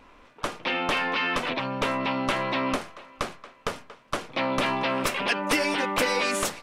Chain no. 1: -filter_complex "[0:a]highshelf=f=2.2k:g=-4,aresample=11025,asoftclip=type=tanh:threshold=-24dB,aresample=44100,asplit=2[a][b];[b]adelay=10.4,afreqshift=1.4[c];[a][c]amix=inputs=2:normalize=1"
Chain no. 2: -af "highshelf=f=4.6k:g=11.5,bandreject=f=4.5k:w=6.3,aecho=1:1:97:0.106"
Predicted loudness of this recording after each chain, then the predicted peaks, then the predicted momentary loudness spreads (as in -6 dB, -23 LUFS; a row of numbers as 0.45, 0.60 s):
-34.0, -25.0 LUFS; -19.0, -8.0 dBFS; 11, 12 LU